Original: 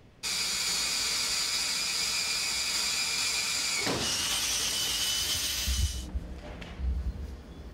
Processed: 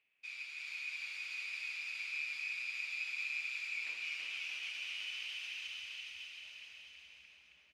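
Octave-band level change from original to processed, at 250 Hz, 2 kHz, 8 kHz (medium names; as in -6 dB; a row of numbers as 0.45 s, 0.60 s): under -35 dB, -4.0 dB, -28.5 dB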